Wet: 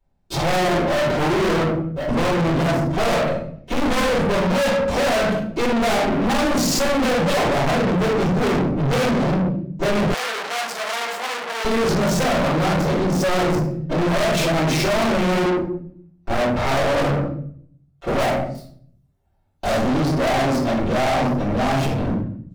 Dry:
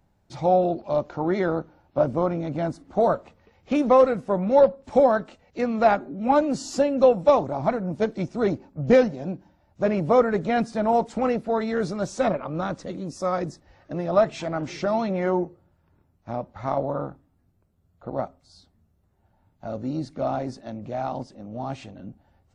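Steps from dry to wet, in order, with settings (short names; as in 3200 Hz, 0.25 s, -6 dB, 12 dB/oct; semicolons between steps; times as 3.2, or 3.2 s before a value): sample leveller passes 5; 1.51–2.08 fade out; 18.19–19.85 high shelf 3500 Hz +9 dB; reverb RT60 0.55 s, pre-delay 3 ms, DRR -13 dB; soft clip -9 dBFS, distortion -3 dB; 10.14–11.65 Bessel high-pass 1100 Hz, order 2; gain -8.5 dB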